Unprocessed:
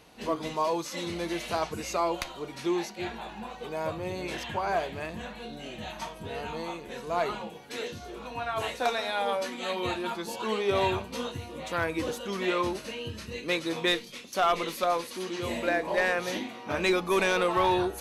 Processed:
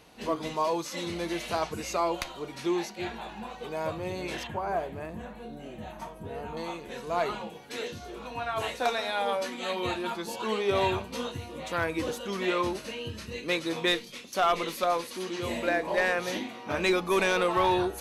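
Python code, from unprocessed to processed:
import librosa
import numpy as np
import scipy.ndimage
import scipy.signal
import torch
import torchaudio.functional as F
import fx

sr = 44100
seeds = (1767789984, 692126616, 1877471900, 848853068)

y = fx.peak_eq(x, sr, hz=4100.0, db=-12.5, octaves=2.4, at=(4.47, 6.57))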